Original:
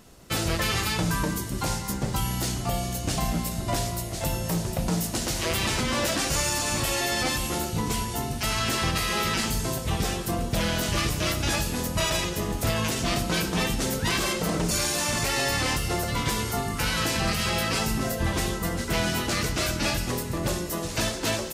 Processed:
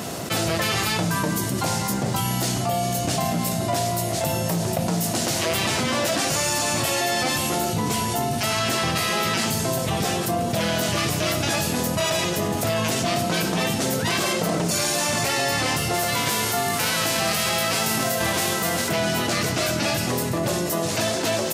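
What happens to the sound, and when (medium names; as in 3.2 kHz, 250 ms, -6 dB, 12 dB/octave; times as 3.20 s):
15.93–18.88 s: formants flattened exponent 0.6
whole clip: high-pass 100 Hz 24 dB/octave; peaking EQ 680 Hz +6 dB 0.35 oct; level flattener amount 70%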